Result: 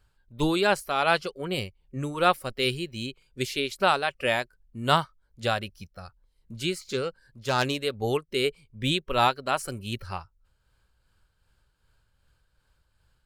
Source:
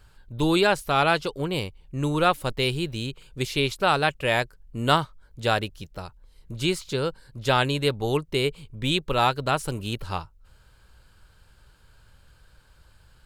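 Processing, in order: 6.88–7.81 self-modulated delay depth 0.07 ms; spectral noise reduction 11 dB; tremolo 2.6 Hz, depth 42%

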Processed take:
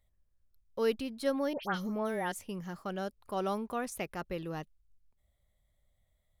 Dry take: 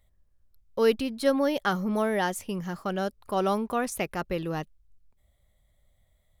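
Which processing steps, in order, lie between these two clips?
1.53–2.32 dispersion highs, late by 99 ms, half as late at 2000 Hz; gain -7.5 dB

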